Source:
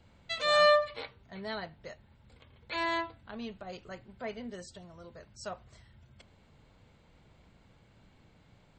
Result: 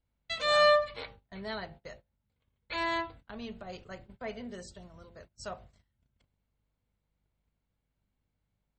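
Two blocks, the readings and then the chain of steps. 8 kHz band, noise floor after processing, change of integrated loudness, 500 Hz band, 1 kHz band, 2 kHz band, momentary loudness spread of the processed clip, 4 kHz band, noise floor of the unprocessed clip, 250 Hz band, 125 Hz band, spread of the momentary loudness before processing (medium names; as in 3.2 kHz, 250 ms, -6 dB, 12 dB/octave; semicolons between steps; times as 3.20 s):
0.0 dB, -83 dBFS, +1.5 dB, 0.0 dB, 0.0 dB, 0.0 dB, 22 LU, 0.0 dB, -63 dBFS, -0.5 dB, 0.0 dB, 26 LU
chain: hum 50 Hz, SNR 25 dB; bass shelf 68 Hz +4 dB; de-hum 57.39 Hz, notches 16; gate -50 dBFS, range -24 dB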